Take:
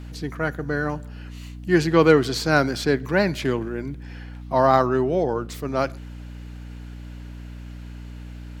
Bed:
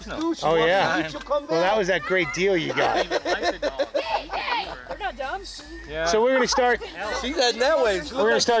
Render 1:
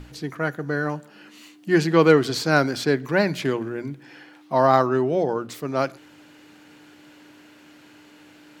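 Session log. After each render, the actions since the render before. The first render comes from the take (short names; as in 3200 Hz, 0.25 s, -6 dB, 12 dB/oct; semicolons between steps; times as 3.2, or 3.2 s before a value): notches 60/120/180/240 Hz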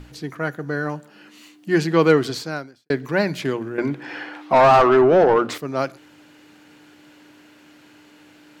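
2.27–2.9 fade out quadratic; 3.78–5.58 overdrive pedal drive 24 dB, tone 1400 Hz, clips at -4 dBFS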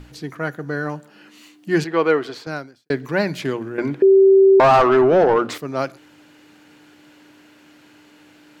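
1.84–2.47 tone controls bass -15 dB, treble -13 dB; 4.02–4.6 bleep 387 Hz -7.5 dBFS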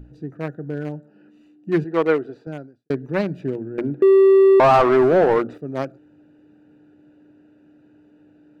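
Wiener smoothing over 41 samples; dynamic EQ 5600 Hz, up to -3 dB, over -43 dBFS, Q 0.75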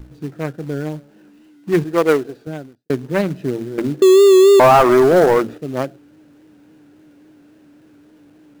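vibrato 3.6 Hz 65 cents; in parallel at -5.5 dB: companded quantiser 4-bit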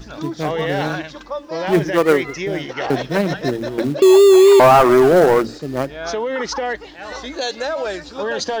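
add bed -3 dB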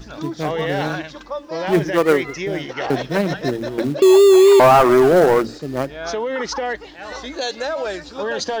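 gain -1 dB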